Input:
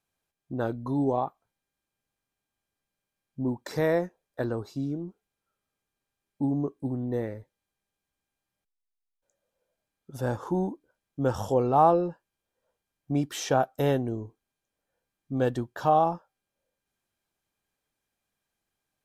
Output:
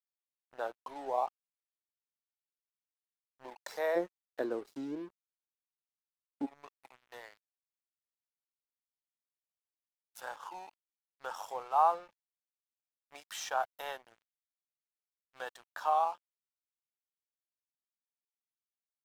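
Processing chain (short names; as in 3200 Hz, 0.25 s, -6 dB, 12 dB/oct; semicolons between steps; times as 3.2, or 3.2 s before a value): ladder high-pass 520 Hz, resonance 30%, from 3.95 s 270 Hz, from 6.45 s 740 Hz; crossover distortion -54.5 dBFS; mismatched tape noise reduction encoder only; gain +1.5 dB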